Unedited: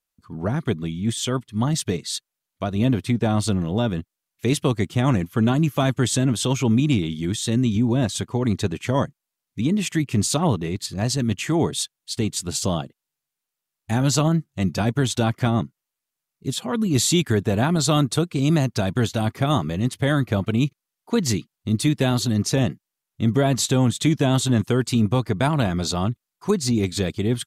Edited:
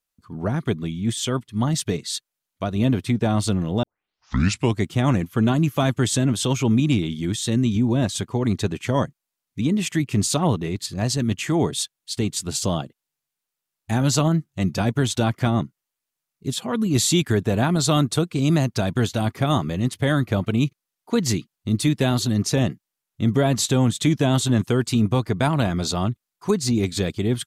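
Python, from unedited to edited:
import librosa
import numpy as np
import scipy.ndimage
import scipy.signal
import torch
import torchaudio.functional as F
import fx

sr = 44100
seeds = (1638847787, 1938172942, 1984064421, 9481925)

y = fx.edit(x, sr, fx.tape_start(start_s=3.83, length_s=0.96), tone=tone)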